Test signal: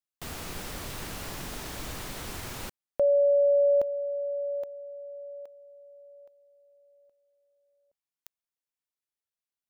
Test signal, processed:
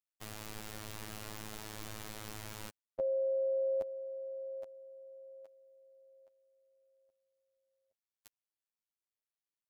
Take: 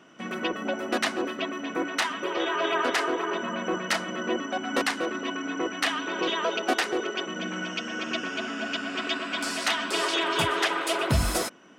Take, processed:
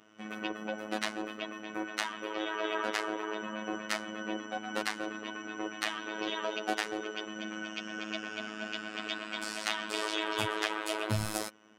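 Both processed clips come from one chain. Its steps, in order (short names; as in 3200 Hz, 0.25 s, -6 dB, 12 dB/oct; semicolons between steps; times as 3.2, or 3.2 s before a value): robotiser 107 Hz; gain -5.5 dB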